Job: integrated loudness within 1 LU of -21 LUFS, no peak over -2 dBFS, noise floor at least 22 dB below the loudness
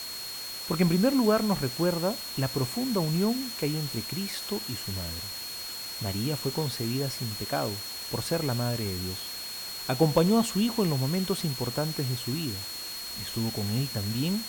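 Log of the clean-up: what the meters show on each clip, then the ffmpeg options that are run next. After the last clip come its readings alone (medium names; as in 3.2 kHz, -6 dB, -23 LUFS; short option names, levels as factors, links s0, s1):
steady tone 4.3 kHz; tone level -37 dBFS; noise floor -38 dBFS; noise floor target -51 dBFS; loudness -29.0 LUFS; peak level -10.5 dBFS; loudness target -21.0 LUFS
-> -af "bandreject=f=4300:w=30"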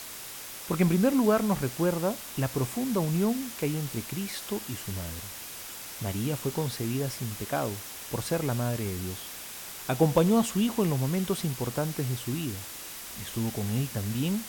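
steady tone not found; noise floor -41 dBFS; noise floor target -52 dBFS
-> -af "afftdn=nr=11:nf=-41"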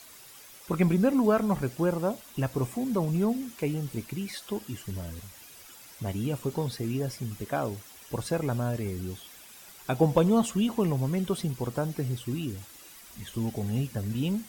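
noise floor -50 dBFS; noise floor target -52 dBFS
-> -af "afftdn=nr=6:nf=-50"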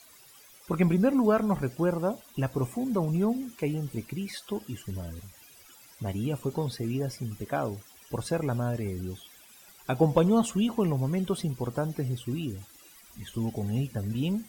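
noise floor -54 dBFS; loudness -29.5 LUFS; peak level -11.0 dBFS; loudness target -21.0 LUFS
-> -af "volume=2.66"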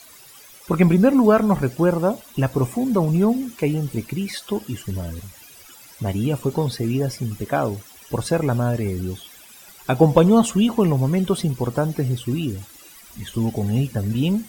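loudness -21.0 LUFS; peak level -2.5 dBFS; noise floor -46 dBFS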